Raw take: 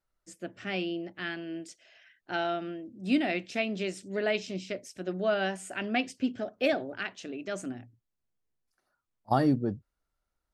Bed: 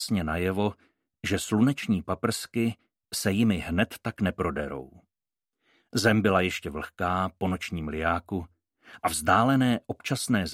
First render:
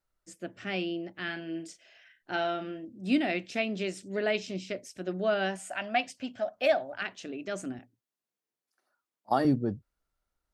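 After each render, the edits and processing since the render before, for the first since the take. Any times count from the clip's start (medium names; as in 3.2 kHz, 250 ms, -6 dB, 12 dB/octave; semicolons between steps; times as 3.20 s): 1.24–2.85 s: doubling 37 ms -9 dB; 5.59–7.02 s: resonant low shelf 520 Hz -6.5 dB, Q 3; 7.79–9.45 s: high-pass 260 Hz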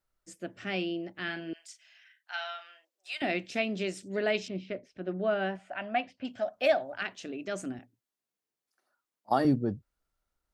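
1.53–3.22 s: Bessel high-pass 1.3 kHz, order 6; 4.48–6.25 s: distance through air 330 m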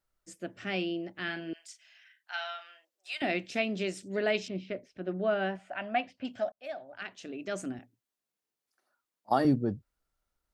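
6.52–7.53 s: fade in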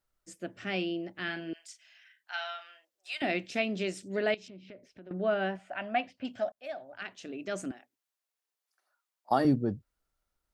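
4.34–5.11 s: compression 4:1, threshold -47 dBFS; 7.71–9.31 s: high-pass 600 Hz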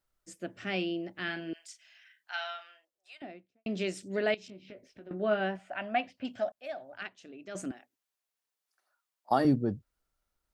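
2.43–3.66 s: studio fade out; 4.47–5.40 s: doubling 19 ms -7.5 dB; 7.08–7.55 s: gain -8 dB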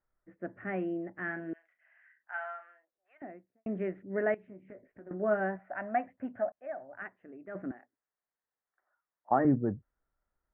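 elliptic low-pass 1.9 kHz, stop band 60 dB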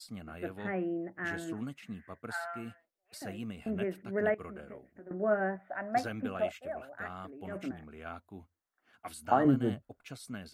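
add bed -17.5 dB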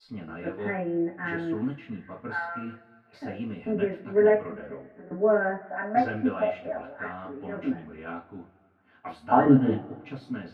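distance through air 340 m; two-slope reverb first 0.24 s, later 2.4 s, from -28 dB, DRR -7.5 dB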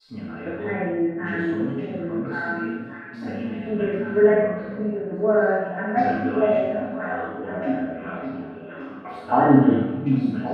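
on a send: repeats whose band climbs or falls 564 ms, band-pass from 170 Hz, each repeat 1.4 oct, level -1 dB; on the sum: Schroeder reverb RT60 0.89 s, combs from 30 ms, DRR -2 dB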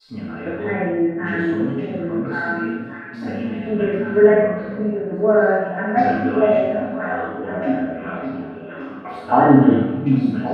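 trim +4 dB; peak limiter -1 dBFS, peak gain reduction 1.5 dB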